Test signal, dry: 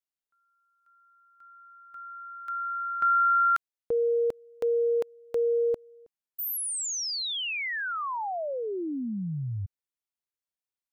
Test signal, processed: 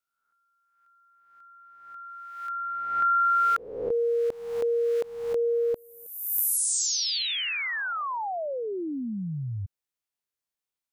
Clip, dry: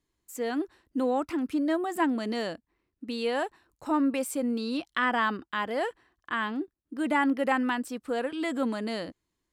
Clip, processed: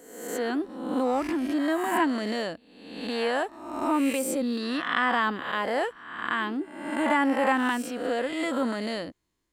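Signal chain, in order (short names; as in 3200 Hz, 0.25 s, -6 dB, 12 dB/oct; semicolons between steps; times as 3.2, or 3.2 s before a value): spectral swells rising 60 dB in 0.95 s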